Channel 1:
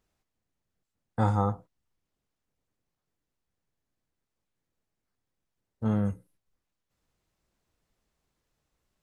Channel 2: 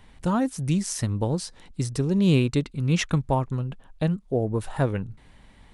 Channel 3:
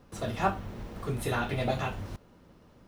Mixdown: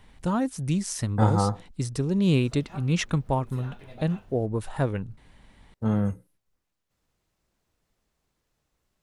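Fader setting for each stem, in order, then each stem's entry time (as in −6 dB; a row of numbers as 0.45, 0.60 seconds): +2.5, −2.0, −16.5 decibels; 0.00, 0.00, 2.30 seconds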